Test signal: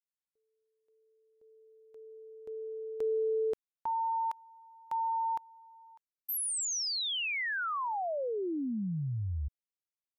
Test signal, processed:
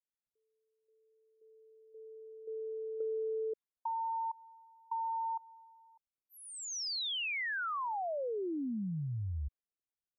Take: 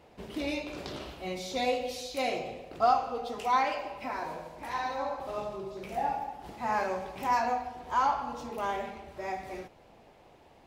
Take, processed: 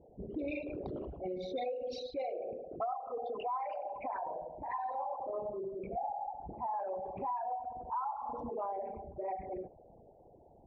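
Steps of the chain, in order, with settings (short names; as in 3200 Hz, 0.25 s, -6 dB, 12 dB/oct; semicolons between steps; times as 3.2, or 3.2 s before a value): formant sharpening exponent 3; low-pass opened by the level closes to 530 Hz, open at -28 dBFS; compressor 8:1, threshold -34 dBFS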